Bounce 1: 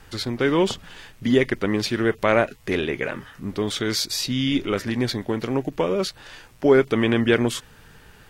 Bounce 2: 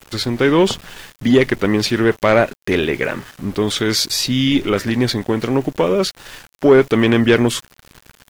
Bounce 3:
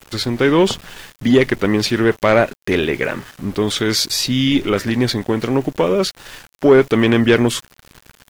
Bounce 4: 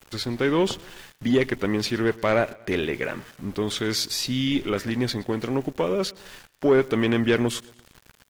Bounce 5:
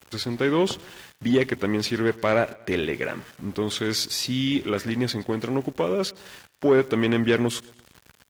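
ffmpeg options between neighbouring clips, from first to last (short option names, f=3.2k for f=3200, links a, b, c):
-af "acontrast=77,aeval=exprs='val(0)*gte(abs(val(0)),0.0178)':c=same"
-af anull
-af "aecho=1:1:118|236|354:0.0708|0.0347|0.017,volume=-8dB"
-af "highpass=54"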